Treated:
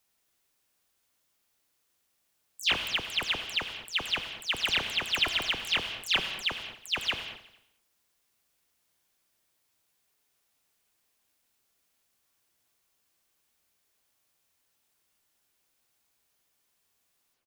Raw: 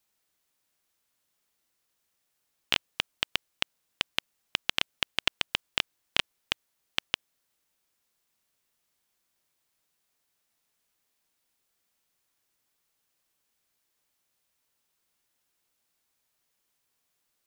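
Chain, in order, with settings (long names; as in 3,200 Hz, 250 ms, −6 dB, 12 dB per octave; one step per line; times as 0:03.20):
every frequency bin delayed by itself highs early, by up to 127 ms
repeating echo 90 ms, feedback 55%, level −14.5 dB
reverb whose tail is shaped and stops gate 250 ms flat, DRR 7.5 dB
level +2 dB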